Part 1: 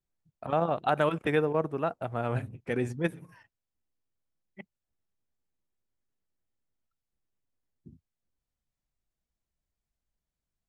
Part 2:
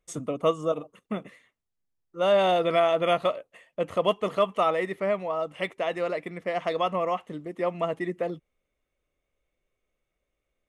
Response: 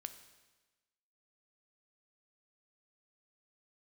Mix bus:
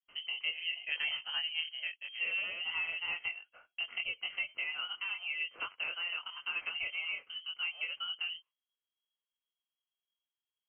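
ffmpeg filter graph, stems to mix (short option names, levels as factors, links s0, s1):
-filter_complex "[0:a]volume=0.447[s0];[1:a]highpass=200,agate=range=0.126:threshold=0.00251:ratio=16:detection=peak,acompressor=threshold=0.0398:ratio=10,volume=0.75,asplit=2[s1][s2];[s2]apad=whole_len=471292[s3];[s0][s3]sidechaincompress=threshold=0.00316:ratio=8:attack=28:release=118[s4];[s4][s1]amix=inputs=2:normalize=0,flanger=delay=18.5:depth=6.9:speed=0.91,lowpass=f=2800:t=q:w=0.5098,lowpass=f=2800:t=q:w=0.6013,lowpass=f=2800:t=q:w=0.9,lowpass=f=2800:t=q:w=2.563,afreqshift=-3300"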